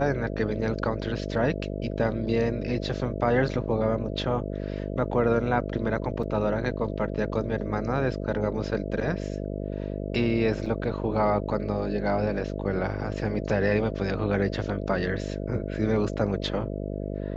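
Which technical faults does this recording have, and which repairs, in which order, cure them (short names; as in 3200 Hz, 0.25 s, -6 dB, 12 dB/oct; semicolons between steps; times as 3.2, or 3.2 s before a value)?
buzz 50 Hz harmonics 13 -32 dBFS
6.23 gap 4.5 ms
10.66 gap 3.8 ms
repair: de-hum 50 Hz, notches 13; interpolate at 6.23, 4.5 ms; interpolate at 10.66, 3.8 ms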